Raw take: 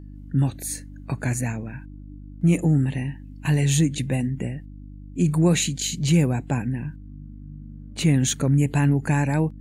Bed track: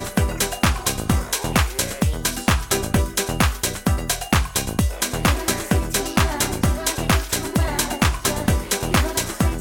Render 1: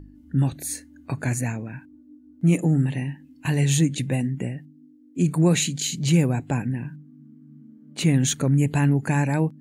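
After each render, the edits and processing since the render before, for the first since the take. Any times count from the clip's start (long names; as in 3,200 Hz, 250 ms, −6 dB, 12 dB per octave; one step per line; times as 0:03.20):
hum removal 50 Hz, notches 4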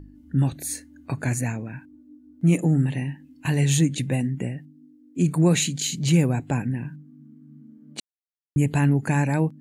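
0:08.00–0:08.56: silence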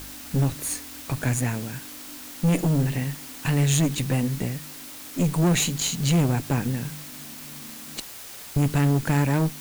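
tube saturation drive 20 dB, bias 0.6
in parallel at −4.5 dB: bit-depth reduction 6 bits, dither triangular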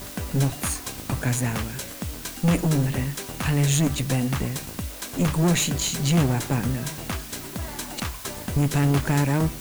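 mix in bed track −12.5 dB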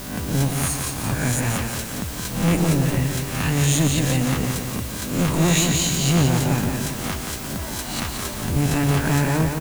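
peak hold with a rise ahead of every peak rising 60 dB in 0.67 s
on a send: repeating echo 174 ms, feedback 50%, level −5.5 dB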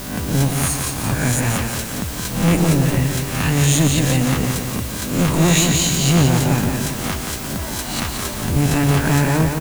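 level +3.5 dB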